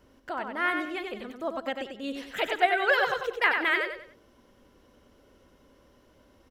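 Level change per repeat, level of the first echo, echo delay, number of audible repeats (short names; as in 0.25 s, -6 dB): -9.5 dB, -5.5 dB, 94 ms, 4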